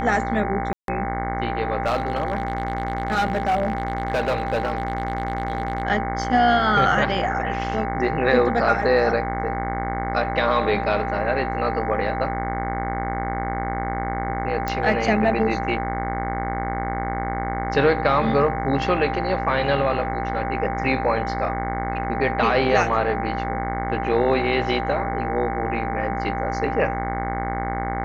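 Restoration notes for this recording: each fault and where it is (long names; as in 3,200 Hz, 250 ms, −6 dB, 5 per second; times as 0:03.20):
mains buzz 60 Hz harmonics 37 −28 dBFS
whistle 790 Hz −27 dBFS
0:00.73–0:00.88: drop-out 152 ms
0:01.85–0:05.83: clipping −16.5 dBFS
0:14.68: click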